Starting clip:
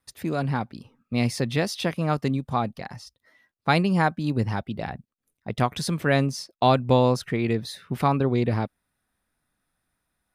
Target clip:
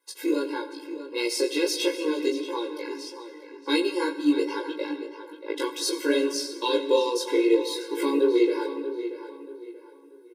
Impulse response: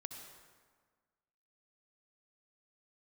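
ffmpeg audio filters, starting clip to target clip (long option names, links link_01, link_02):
-filter_complex "[0:a]acrossover=split=430|3000[link_01][link_02][link_03];[link_02]acompressor=threshold=-41dB:ratio=3[link_04];[link_01][link_04][link_03]amix=inputs=3:normalize=0,flanger=delay=17:depth=5.5:speed=2.4,asplit=2[link_05][link_06];[link_06]adelay=17,volume=-2dB[link_07];[link_05][link_07]amix=inputs=2:normalize=0,asplit=2[link_08][link_09];[link_09]adelay=633,lowpass=frequency=3600:poles=1,volume=-11dB,asplit=2[link_10][link_11];[link_11]adelay=633,lowpass=frequency=3600:poles=1,volume=0.34,asplit=2[link_12][link_13];[link_13]adelay=633,lowpass=frequency=3600:poles=1,volume=0.34,asplit=2[link_14][link_15];[link_15]adelay=633,lowpass=frequency=3600:poles=1,volume=0.34[link_16];[link_08][link_10][link_12][link_14][link_16]amix=inputs=5:normalize=0,asplit=2[link_17][link_18];[1:a]atrim=start_sample=2205[link_19];[link_18][link_19]afir=irnorm=-1:irlink=0,volume=1dB[link_20];[link_17][link_20]amix=inputs=2:normalize=0,afftfilt=real='re*eq(mod(floor(b*sr/1024/280),2),1)':imag='im*eq(mod(floor(b*sr/1024/280),2),1)':win_size=1024:overlap=0.75,volume=4.5dB"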